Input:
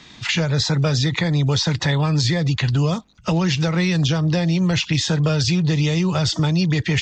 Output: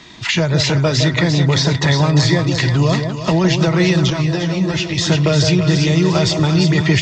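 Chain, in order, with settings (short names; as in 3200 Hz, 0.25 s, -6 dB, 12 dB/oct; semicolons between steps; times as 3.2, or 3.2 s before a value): small resonant body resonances 360/640/980/1900 Hz, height 7 dB; on a send: split-band echo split 910 Hz, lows 0.162 s, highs 0.348 s, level -6 dB; 4.1–4.98 on the sum: ensemble effect; gain +3 dB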